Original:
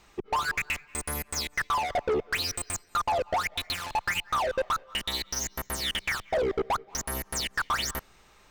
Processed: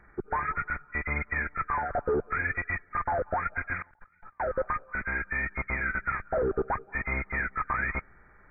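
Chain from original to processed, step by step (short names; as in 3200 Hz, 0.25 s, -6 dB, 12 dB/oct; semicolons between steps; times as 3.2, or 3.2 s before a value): nonlinear frequency compression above 1200 Hz 4:1; low shelf 340 Hz +8 dB; 3.82–4.4 negative-ratio compressor -55 dBFS, ratio -1; gain -3.5 dB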